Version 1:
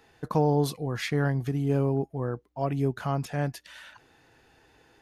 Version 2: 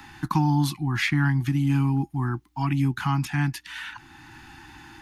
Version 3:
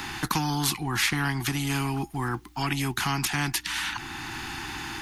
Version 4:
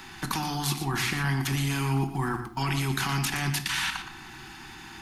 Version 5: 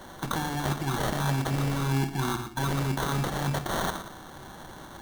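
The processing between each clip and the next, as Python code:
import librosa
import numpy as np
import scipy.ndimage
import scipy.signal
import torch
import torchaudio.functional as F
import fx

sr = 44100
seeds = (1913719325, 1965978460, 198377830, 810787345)

y1 = scipy.signal.sosfilt(scipy.signal.ellip(3, 1.0, 40, [340.0, 810.0], 'bandstop', fs=sr, output='sos'), x)
y1 = fx.dynamic_eq(y1, sr, hz=2400.0, q=1.3, threshold_db=-52.0, ratio=4.0, max_db=5)
y1 = fx.band_squash(y1, sr, depth_pct=40)
y1 = y1 * librosa.db_to_amplitude(5.5)
y2 = fx.peak_eq(y1, sr, hz=450.0, db=8.5, octaves=0.41)
y2 = fx.spectral_comp(y2, sr, ratio=2.0)
y3 = fx.level_steps(y2, sr, step_db=16)
y3 = y3 + 10.0 ** (-9.5 / 20.0) * np.pad(y3, (int(118 * sr / 1000.0), 0))[:len(y3)]
y3 = fx.room_shoebox(y3, sr, seeds[0], volume_m3=920.0, walls='furnished', distance_m=1.1)
y3 = y3 * librosa.db_to_amplitude(2.5)
y4 = fx.sample_hold(y3, sr, seeds[1], rate_hz=2500.0, jitter_pct=0)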